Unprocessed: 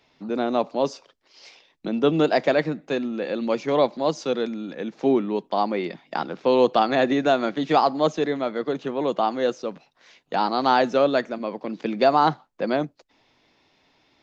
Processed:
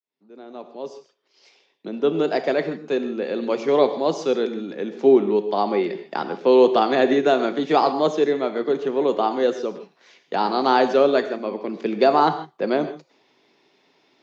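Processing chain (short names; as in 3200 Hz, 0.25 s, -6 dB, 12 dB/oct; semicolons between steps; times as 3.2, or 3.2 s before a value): opening faded in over 3.65 s; HPF 150 Hz 24 dB/oct; bell 400 Hz +9 dB 0.3 oct; non-linear reverb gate 0.18 s flat, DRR 9 dB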